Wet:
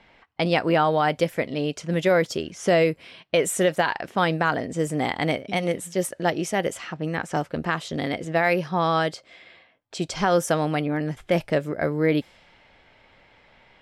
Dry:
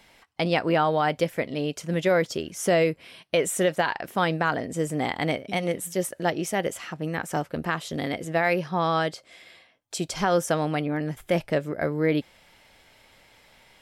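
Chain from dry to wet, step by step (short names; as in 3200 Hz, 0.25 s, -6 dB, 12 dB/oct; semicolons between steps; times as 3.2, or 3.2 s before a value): low-pass opened by the level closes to 2700 Hz, open at -21.5 dBFS; gain +2 dB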